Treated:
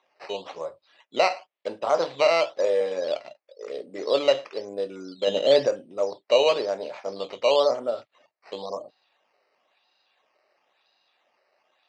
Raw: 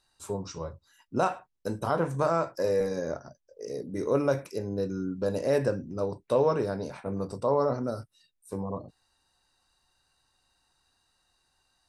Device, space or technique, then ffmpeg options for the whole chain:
circuit-bent sampling toy: -filter_complex "[0:a]asettb=1/sr,asplit=3[a][b][c];[a]atrim=end=5.274[d];[b]atrim=start=5.27:end=5.67,asetpts=PTS-STARTPTS,afade=t=in:d=0.004:c=qsin,afade=t=out:st=0.396:d=0.004:c=qsin,equalizer=f=170:w=0.81:g=10.5[e];[c]atrim=start=5.666[f];[d][e]acrossfade=d=0.004:c1=hsin:c2=qsin[g];[g][f]acrossfade=d=0.004:c1=qsin:c2=hsin,acrusher=samples=9:mix=1:aa=0.000001:lfo=1:lforange=9:lforate=0.98,highpass=590,equalizer=f=600:t=q:w=4:g=6,equalizer=f=980:t=q:w=4:g=-4,equalizer=f=1.5k:t=q:w=4:g=-8,lowpass=f=4.8k:w=0.5412,lowpass=f=4.8k:w=1.3066,volume=6.5dB"

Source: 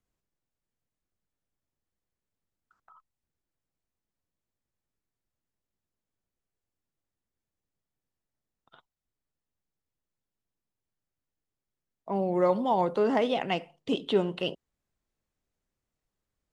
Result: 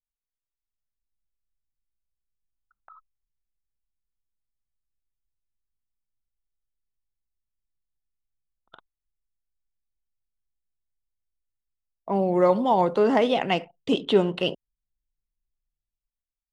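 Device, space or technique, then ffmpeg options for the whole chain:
voice memo with heavy noise removal: -af "anlmdn=0.001,dynaudnorm=f=180:g=9:m=15.5dB,volume=-6.5dB"

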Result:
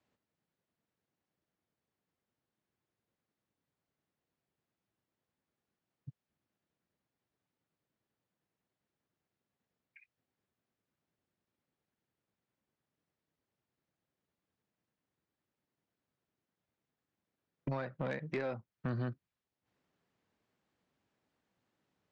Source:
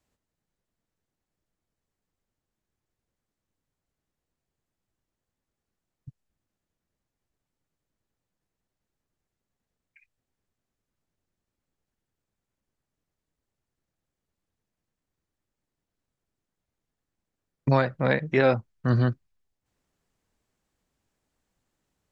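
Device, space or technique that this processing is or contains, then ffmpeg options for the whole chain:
AM radio: -af "highpass=120,lowpass=4.1k,acompressor=threshold=-31dB:ratio=8,asoftclip=type=tanh:threshold=-27dB,volume=-1dB"

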